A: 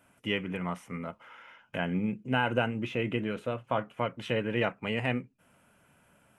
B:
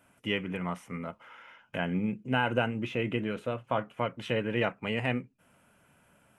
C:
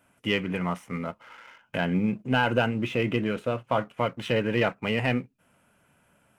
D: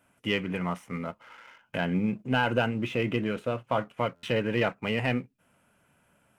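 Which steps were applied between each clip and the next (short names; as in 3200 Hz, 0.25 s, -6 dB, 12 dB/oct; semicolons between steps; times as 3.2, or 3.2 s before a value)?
nothing audible
sample leveller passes 1; gain +1.5 dB
stuck buffer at 4.15, samples 512, times 6; gain -2 dB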